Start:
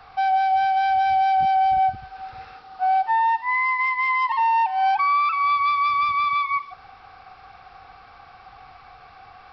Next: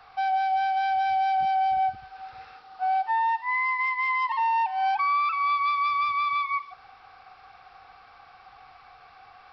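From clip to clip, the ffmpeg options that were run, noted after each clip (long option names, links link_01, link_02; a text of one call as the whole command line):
ffmpeg -i in.wav -af "lowshelf=frequency=380:gain=-7.5,volume=-3.5dB" out.wav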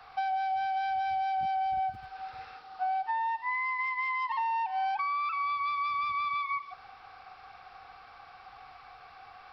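ffmpeg -i in.wav -filter_complex "[0:a]acrossover=split=120[link_01][link_02];[link_01]acrusher=samples=41:mix=1:aa=0.000001:lfo=1:lforange=41:lforate=0.25[link_03];[link_03][link_02]amix=inputs=2:normalize=0,acrossover=split=310[link_04][link_05];[link_05]acompressor=threshold=-29dB:ratio=6[link_06];[link_04][link_06]amix=inputs=2:normalize=0" out.wav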